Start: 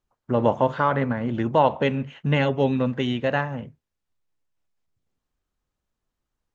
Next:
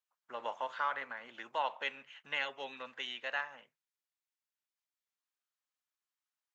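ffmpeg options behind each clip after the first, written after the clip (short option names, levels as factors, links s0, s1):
-af "highpass=1300,volume=0.473"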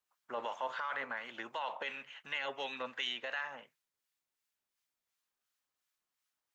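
-filter_complex "[0:a]alimiter=level_in=2.82:limit=0.0631:level=0:latency=1:release=19,volume=0.355,acrossover=split=1200[s0][s1];[s0]aeval=exprs='val(0)*(1-0.5/2+0.5/2*cos(2*PI*2.8*n/s))':c=same[s2];[s1]aeval=exprs='val(0)*(1-0.5/2-0.5/2*cos(2*PI*2.8*n/s))':c=same[s3];[s2][s3]amix=inputs=2:normalize=0,volume=2.37"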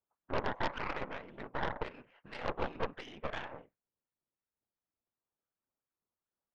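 -af "afftfilt=real='hypot(re,im)*cos(2*PI*random(0))':imag='hypot(re,im)*sin(2*PI*random(1))':win_size=512:overlap=0.75,adynamicsmooth=sensitivity=1:basefreq=770,aeval=exprs='0.0188*(cos(1*acos(clip(val(0)/0.0188,-1,1)))-cos(1*PI/2))+0.00668*(cos(6*acos(clip(val(0)/0.0188,-1,1)))-cos(6*PI/2))':c=same,volume=3.55"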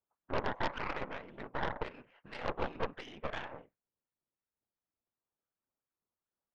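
-af anull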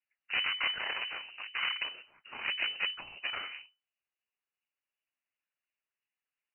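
-af "lowpass=f=2600:t=q:w=0.5098,lowpass=f=2600:t=q:w=0.6013,lowpass=f=2600:t=q:w=0.9,lowpass=f=2600:t=q:w=2.563,afreqshift=-3000,volume=1.26"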